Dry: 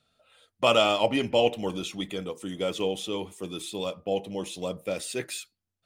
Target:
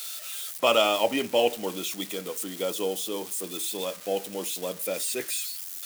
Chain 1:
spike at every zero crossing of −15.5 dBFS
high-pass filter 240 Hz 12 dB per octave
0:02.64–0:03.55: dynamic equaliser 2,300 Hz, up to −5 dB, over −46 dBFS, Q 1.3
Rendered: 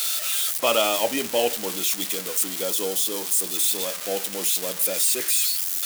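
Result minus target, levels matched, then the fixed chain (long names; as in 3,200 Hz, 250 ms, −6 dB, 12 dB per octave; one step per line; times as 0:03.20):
spike at every zero crossing: distortion +11 dB
spike at every zero crossing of −27 dBFS
high-pass filter 240 Hz 12 dB per octave
0:02.64–0:03.55: dynamic equaliser 2,300 Hz, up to −5 dB, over −46 dBFS, Q 1.3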